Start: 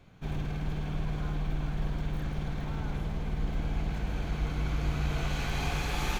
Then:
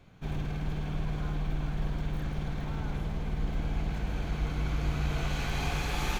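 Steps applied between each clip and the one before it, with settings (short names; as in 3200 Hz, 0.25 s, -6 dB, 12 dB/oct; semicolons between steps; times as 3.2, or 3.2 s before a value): nothing audible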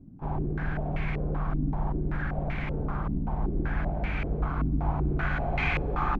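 bell 480 Hz -8 dB 0.27 oct; in parallel at -9.5 dB: wrapped overs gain 33.5 dB; on the sum: stepped low-pass 5.2 Hz 270–2200 Hz; gain +2 dB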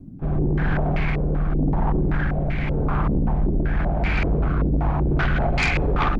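rotary speaker horn 0.9 Hz, later 5 Hz, at 4.48; sine folder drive 8 dB, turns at -15.5 dBFS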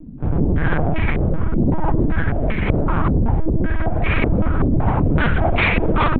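LPC vocoder at 8 kHz pitch kept; gain +4 dB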